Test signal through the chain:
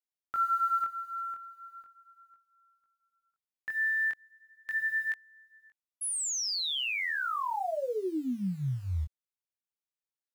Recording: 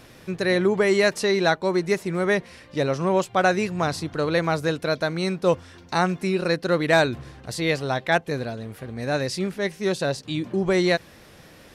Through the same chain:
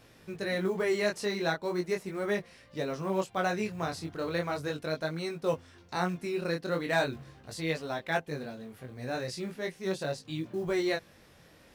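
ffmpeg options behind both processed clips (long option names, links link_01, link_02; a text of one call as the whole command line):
ffmpeg -i in.wav -af "acrusher=bits=8:mode=log:mix=0:aa=0.000001,flanger=delay=18.5:depth=5.9:speed=0.38,volume=-6.5dB" out.wav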